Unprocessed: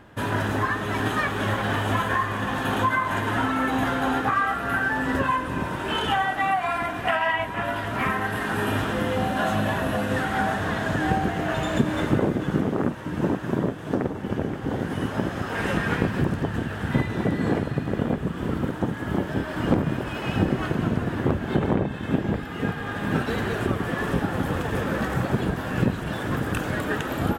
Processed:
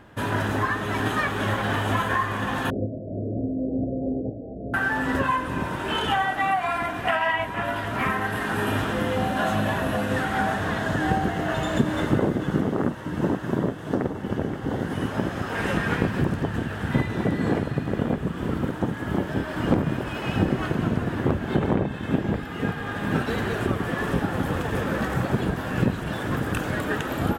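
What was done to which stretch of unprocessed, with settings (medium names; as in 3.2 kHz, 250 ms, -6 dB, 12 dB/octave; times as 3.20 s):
2.70–4.74 s: steep low-pass 650 Hz 96 dB/octave
10.80–14.95 s: band-stop 2.4 kHz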